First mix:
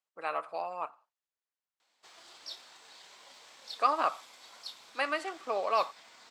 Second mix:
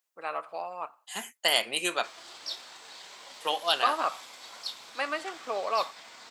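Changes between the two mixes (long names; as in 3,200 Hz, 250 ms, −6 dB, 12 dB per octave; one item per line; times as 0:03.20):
second voice: unmuted
background +7.0 dB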